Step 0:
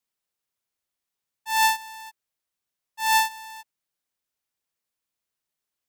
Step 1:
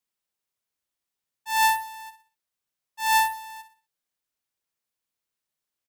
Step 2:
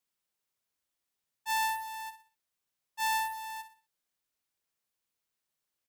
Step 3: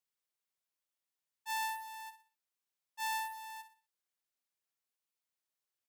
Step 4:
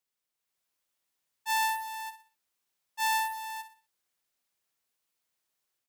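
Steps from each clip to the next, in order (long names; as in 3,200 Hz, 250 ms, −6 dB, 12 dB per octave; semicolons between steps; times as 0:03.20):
repeating echo 61 ms, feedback 37%, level −11.5 dB; level −1.5 dB
downward compressor 10 to 1, threshold −28 dBFS, peak gain reduction 11.5 dB
low-shelf EQ 250 Hz −8 dB; level −6 dB
automatic gain control gain up to 6 dB; level +2.5 dB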